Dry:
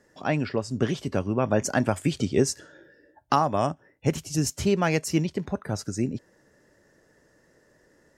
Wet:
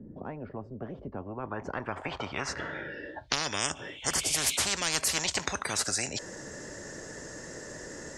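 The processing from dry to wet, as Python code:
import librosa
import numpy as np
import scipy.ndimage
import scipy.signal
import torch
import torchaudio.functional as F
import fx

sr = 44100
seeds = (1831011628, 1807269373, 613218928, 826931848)

y = fx.spec_repair(x, sr, seeds[0], start_s=3.78, length_s=0.76, low_hz=2100.0, high_hz=4300.0, source='both')
y = fx.filter_sweep_lowpass(y, sr, from_hz=220.0, to_hz=7200.0, start_s=1.11, end_s=3.68, q=3.5)
y = fx.spectral_comp(y, sr, ratio=10.0)
y = F.gain(torch.from_numpy(y), -4.0).numpy()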